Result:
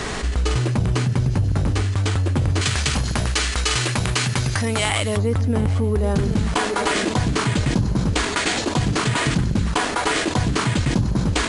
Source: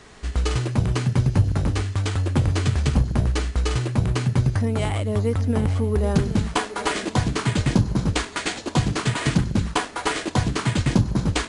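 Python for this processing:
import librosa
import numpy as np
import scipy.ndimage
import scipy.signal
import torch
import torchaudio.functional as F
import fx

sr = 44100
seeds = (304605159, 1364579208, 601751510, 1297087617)

y = fx.tilt_shelf(x, sr, db=-8.5, hz=870.0, at=(2.61, 5.17))
y = fx.env_flatten(y, sr, amount_pct=70)
y = y * 10.0 ** (-4.0 / 20.0)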